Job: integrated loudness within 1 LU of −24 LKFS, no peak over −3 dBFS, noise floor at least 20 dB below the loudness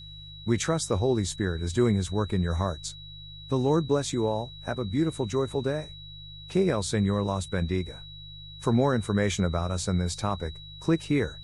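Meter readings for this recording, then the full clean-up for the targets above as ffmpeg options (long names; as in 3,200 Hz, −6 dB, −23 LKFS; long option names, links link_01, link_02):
mains hum 50 Hz; hum harmonics up to 150 Hz; level of the hum −45 dBFS; interfering tone 3,900 Hz; level of the tone −44 dBFS; integrated loudness −28.0 LKFS; sample peak −12.0 dBFS; target loudness −24.0 LKFS
→ -af "bandreject=frequency=50:width_type=h:width=4,bandreject=frequency=100:width_type=h:width=4,bandreject=frequency=150:width_type=h:width=4"
-af "bandreject=frequency=3900:width=30"
-af "volume=4dB"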